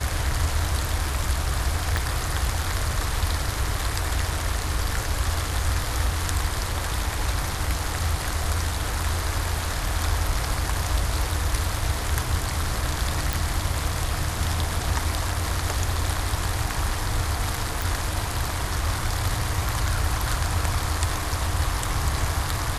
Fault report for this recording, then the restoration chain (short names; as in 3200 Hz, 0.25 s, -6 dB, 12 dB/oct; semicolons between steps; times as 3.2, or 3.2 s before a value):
1.97 pop
13.33 pop
17.82 pop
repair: de-click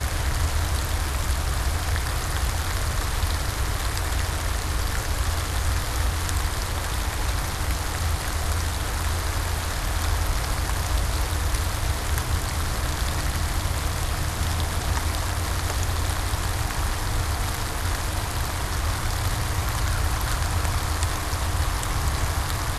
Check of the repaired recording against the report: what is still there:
1.97 pop